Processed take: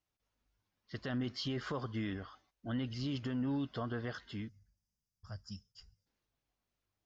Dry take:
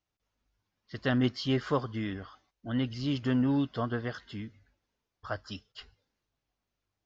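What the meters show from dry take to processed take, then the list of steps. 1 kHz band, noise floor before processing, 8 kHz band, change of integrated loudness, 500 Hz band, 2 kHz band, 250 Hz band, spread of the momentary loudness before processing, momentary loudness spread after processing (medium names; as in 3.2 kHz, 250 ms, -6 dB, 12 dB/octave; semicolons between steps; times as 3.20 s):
-8.5 dB, under -85 dBFS, no reading, -8.0 dB, -9.0 dB, -7.5 dB, -8.0 dB, 19 LU, 14 LU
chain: time-frequency box 4.49–6.07 s, 230–4600 Hz -17 dB; peak limiter -26.5 dBFS, peak gain reduction 11 dB; trim -2.5 dB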